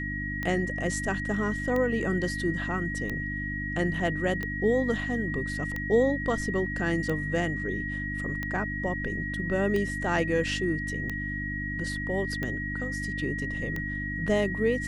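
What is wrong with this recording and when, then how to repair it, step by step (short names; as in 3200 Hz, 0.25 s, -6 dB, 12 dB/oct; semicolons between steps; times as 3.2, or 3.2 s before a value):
hum 50 Hz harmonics 6 -35 dBFS
tick 45 rpm -19 dBFS
tone 1900 Hz -33 dBFS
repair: de-click; de-hum 50 Hz, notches 6; notch 1900 Hz, Q 30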